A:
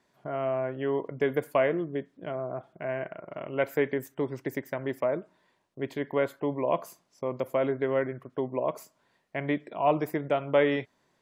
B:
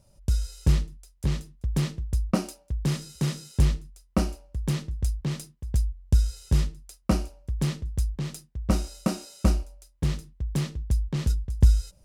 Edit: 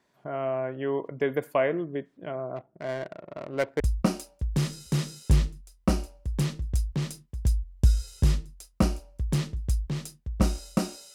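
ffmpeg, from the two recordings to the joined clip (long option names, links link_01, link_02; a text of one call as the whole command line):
ffmpeg -i cue0.wav -i cue1.wav -filter_complex "[0:a]asettb=1/sr,asplit=3[link_01][link_02][link_03];[link_01]atrim=end=2.564[link_04];[link_02]atrim=start=2.56:end=3.8,asetpts=PTS-STARTPTS,afade=type=in:duration=0.004:curve=qsin,afade=type=out:start_time=1.236:duration=0.004:curve=qsin,adynamicsmooth=sensitivity=5.5:basefreq=550[link_05];[link_03]atrim=start=3.796[link_06];[link_04][link_05]acrossfade=duration=0.004:curve1=hsin:curve2=qsin[link_07];[link_07][link_06]acrossfade=duration=0.004:curve1=qsin:curve2=hsin,apad=whole_dur=11.14,atrim=end=11.14,atrim=end=3.802[link_08];[1:a]atrim=start=2.088:end=9.43[link_09];[link_08][link_09]acrossfade=duration=0.004:curve1=hsin:curve2=hsin" out.wav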